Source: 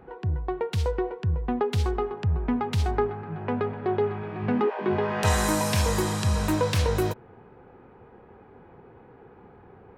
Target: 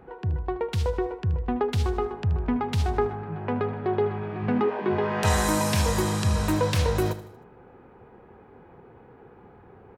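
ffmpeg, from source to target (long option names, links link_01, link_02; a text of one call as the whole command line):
ffmpeg -i in.wav -af "aecho=1:1:77|154|231|308:0.2|0.0918|0.0422|0.0194" out.wav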